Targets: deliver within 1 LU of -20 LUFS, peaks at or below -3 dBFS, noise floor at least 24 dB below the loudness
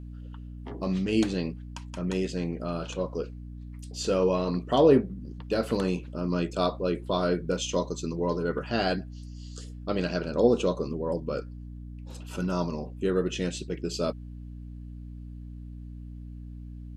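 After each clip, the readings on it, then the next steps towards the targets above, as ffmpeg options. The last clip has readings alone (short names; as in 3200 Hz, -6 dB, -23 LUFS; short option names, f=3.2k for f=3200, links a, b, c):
hum 60 Hz; harmonics up to 300 Hz; hum level -39 dBFS; loudness -28.5 LUFS; peak -8.0 dBFS; loudness target -20.0 LUFS
-> -af "bandreject=f=60:t=h:w=4,bandreject=f=120:t=h:w=4,bandreject=f=180:t=h:w=4,bandreject=f=240:t=h:w=4,bandreject=f=300:t=h:w=4"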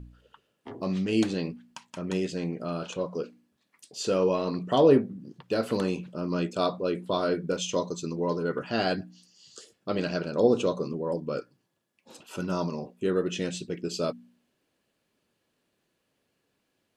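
hum none; loudness -28.5 LUFS; peak -7.5 dBFS; loudness target -20.0 LUFS
-> -af "volume=8.5dB,alimiter=limit=-3dB:level=0:latency=1"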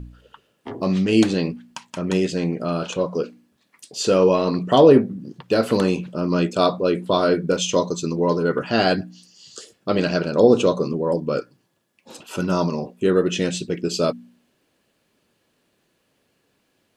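loudness -20.5 LUFS; peak -3.0 dBFS; noise floor -68 dBFS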